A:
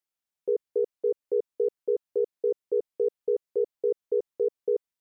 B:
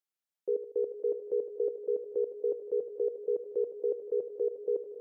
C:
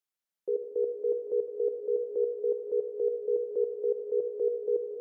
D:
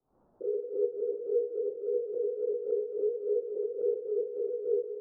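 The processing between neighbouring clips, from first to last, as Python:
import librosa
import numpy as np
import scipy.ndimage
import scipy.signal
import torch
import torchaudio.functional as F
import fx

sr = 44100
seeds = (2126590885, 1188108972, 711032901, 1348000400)

y1 = fx.reverse_delay_fb(x, sr, ms=140, feedback_pct=58, wet_db=-12)
y1 = scipy.signal.sosfilt(scipy.signal.butter(2, 130.0, 'highpass', fs=sr, output='sos'), y1)
y1 = fx.echo_heads(y1, sr, ms=154, heads='all three', feedback_pct=44, wet_db=-18.0)
y1 = y1 * librosa.db_to_amplitude(-4.5)
y2 = fx.rev_spring(y1, sr, rt60_s=3.0, pass_ms=(50, 58), chirp_ms=60, drr_db=7.5)
y3 = fx.phase_scramble(y2, sr, seeds[0], window_ms=100)
y3 = scipy.signal.sosfilt(scipy.signal.bessel(8, 580.0, 'lowpass', norm='mag', fs=sr, output='sos'), y3)
y3 = fx.pre_swell(y3, sr, db_per_s=120.0)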